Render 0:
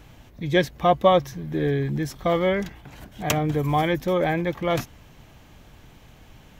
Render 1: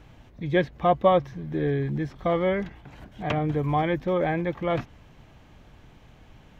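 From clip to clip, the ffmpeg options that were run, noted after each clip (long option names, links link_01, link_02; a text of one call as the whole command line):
ffmpeg -i in.wav -filter_complex "[0:a]acrossover=split=3800[link_01][link_02];[link_02]acompressor=threshold=-53dB:ratio=4:attack=1:release=60[link_03];[link_01][link_03]amix=inputs=2:normalize=0,aemphasis=mode=reproduction:type=50kf,volume=-2dB" out.wav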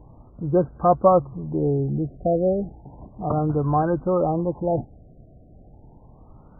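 ffmpeg -i in.wav -af "afftfilt=real='re*lt(b*sr/1024,740*pow(1600/740,0.5+0.5*sin(2*PI*0.33*pts/sr)))':imag='im*lt(b*sr/1024,740*pow(1600/740,0.5+0.5*sin(2*PI*0.33*pts/sr)))':win_size=1024:overlap=0.75,volume=3.5dB" out.wav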